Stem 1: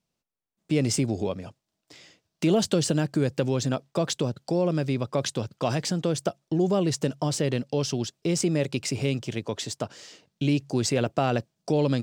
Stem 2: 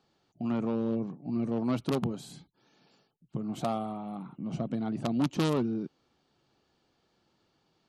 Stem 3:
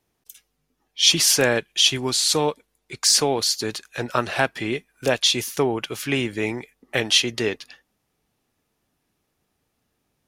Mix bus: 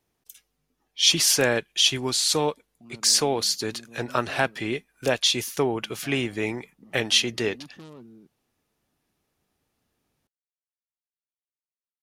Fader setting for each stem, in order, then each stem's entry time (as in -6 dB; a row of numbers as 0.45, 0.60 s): off, -17.5 dB, -2.5 dB; off, 2.40 s, 0.00 s